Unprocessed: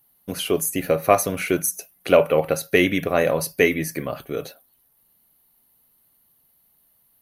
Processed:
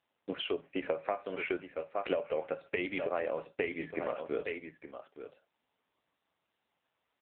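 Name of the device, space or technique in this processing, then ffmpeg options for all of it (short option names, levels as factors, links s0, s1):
voicemail: -filter_complex "[0:a]asettb=1/sr,asplit=3[s0][s1][s2];[s0]atrim=end=1.034[s3];[s1]atrim=start=1.03:end=1.77,asetpts=PTS-STARTPTS,afade=t=in:d=0.004:c=qsin,afade=t=out:st=0.736:d=0.004:c=qsin,lowshelf=f=290:g=-2.5[s4];[s2]atrim=start=1.766[s5];[s3][s4]acrossfade=d=0.004:c1=hsin:c2=qsin[s6];[s6][s5]acrossfade=d=0.004:c1=qsin:c2=hsin,highpass=330,lowpass=3300,aecho=1:1:866:0.211,acompressor=threshold=0.0501:ratio=10,volume=0.75" -ar 8000 -c:a libopencore_amrnb -b:a 6700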